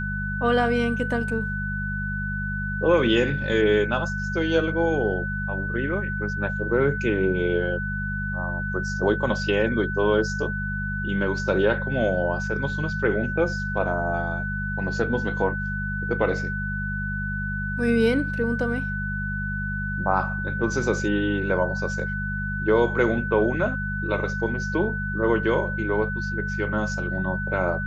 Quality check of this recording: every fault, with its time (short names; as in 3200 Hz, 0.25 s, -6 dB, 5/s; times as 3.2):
hum 50 Hz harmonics 4 -30 dBFS
tone 1500 Hz -29 dBFS